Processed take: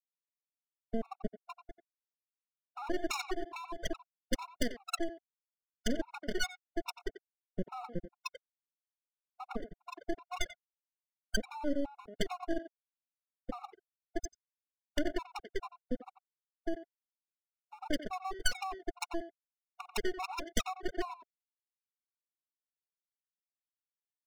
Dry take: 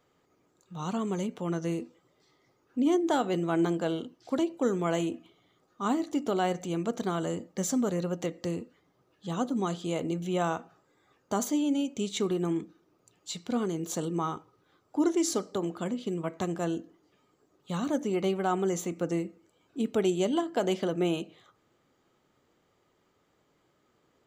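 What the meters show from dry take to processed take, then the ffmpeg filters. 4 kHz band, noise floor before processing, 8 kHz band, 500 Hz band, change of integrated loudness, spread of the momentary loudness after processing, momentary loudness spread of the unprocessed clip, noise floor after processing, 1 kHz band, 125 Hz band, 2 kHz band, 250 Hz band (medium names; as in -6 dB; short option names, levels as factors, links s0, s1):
-2.0 dB, -71 dBFS, -7.0 dB, -11.0 dB, -9.0 dB, 15 LU, 10 LU, under -85 dBFS, -7.5 dB, -16.0 dB, -0.5 dB, -12.5 dB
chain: -filter_complex "[0:a]afftfilt=real='re*gte(hypot(re,im),0.355)':imag='im*gte(hypot(re,im),0.355)':win_size=1024:overlap=0.75,acompressor=threshold=0.0141:ratio=6,aeval=exprs='0.0316*(cos(1*acos(clip(val(0)/0.0316,-1,1)))-cos(1*PI/2))+0.00708*(cos(3*acos(clip(val(0)/0.0316,-1,1)))-cos(3*PI/2))+0.00891*(cos(4*acos(clip(val(0)/0.0316,-1,1)))-cos(4*PI/2))+0.00562*(cos(7*acos(clip(val(0)/0.0316,-1,1)))-cos(7*PI/2))':c=same,aexciter=amount=7.5:drive=6.2:freq=2300,aeval=exprs='abs(val(0))':c=same,asplit=2[s0][s1];[s1]adelay=90,highpass=300,lowpass=3400,asoftclip=type=hard:threshold=0.0335,volume=0.282[s2];[s0][s2]amix=inputs=2:normalize=0,afftfilt=real='re*gt(sin(2*PI*2.4*pts/sr)*(1-2*mod(floor(b*sr/1024/720),2)),0)':imag='im*gt(sin(2*PI*2.4*pts/sr)*(1-2*mod(floor(b*sr/1024/720),2)),0)':win_size=1024:overlap=0.75,volume=2.11"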